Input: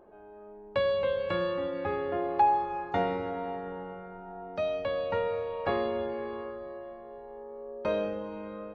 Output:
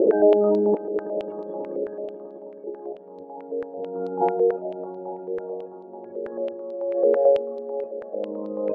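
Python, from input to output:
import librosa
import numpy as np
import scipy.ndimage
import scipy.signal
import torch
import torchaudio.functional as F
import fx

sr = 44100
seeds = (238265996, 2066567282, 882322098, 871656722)

p1 = fx.reverse_delay_fb(x, sr, ms=421, feedback_pct=54, wet_db=-8.5)
p2 = fx.spec_gate(p1, sr, threshold_db=-15, keep='strong')
p3 = scipy.signal.sosfilt(scipy.signal.butter(4, 100.0, 'highpass', fs=sr, output='sos'), p2)
p4 = fx.tilt_eq(p3, sr, slope=-3.0)
p5 = fx.over_compress(p4, sr, threshold_db=-43.0, ratio=-0.5)
p6 = fx.small_body(p5, sr, hz=(320.0, 490.0), ring_ms=20, db=17)
p7 = p6 + fx.echo_swell(p6, sr, ms=108, loudest=5, wet_db=-16.0, dry=0)
y = fx.filter_held_lowpass(p7, sr, hz=9.1, low_hz=470.0, high_hz=4100.0)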